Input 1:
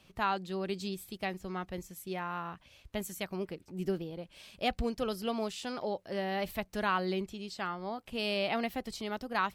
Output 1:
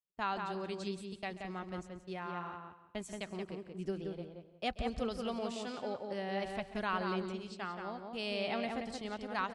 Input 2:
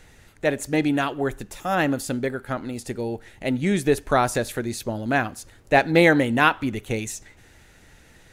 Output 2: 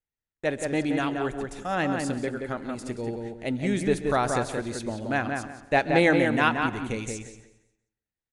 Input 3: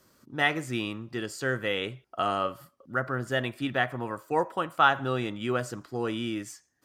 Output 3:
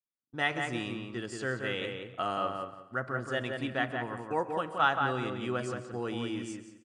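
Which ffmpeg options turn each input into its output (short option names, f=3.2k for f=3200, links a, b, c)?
-filter_complex "[0:a]agate=range=-40dB:threshold=-43dB:ratio=16:detection=peak,asplit=2[a][b];[b]adelay=177,lowpass=f=2.6k:p=1,volume=-4dB,asplit=2[c][d];[d]adelay=177,lowpass=f=2.6k:p=1,volume=0.24,asplit=2[e][f];[f]adelay=177,lowpass=f=2.6k:p=1,volume=0.24[g];[c][e][g]amix=inputs=3:normalize=0[h];[a][h]amix=inputs=2:normalize=0,aresample=22050,aresample=44100,asplit=2[i][j];[j]aecho=0:1:134|268|402|536:0.133|0.0573|0.0247|0.0106[k];[i][k]amix=inputs=2:normalize=0,volume=-5dB"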